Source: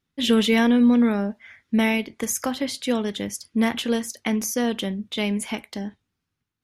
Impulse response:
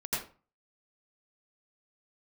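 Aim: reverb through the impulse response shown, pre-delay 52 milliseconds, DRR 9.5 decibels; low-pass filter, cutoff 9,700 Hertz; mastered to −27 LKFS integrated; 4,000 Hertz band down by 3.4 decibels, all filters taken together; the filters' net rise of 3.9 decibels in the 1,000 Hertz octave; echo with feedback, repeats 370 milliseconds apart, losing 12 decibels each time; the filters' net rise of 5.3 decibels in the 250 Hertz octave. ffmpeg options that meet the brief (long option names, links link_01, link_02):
-filter_complex "[0:a]lowpass=9700,equalizer=frequency=250:width_type=o:gain=5.5,equalizer=frequency=1000:width_type=o:gain=5,equalizer=frequency=4000:width_type=o:gain=-5,aecho=1:1:370|740|1110:0.251|0.0628|0.0157,asplit=2[link_01][link_02];[1:a]atrim=start_sample=2205,adelay=52[link_03];[link_02][link_03]afir=irnorm=-1:irlink=0,volume=-15dB[link_04];[link_01][link_04]amix=inputs=2:normalize=0,volume=-9.5dB"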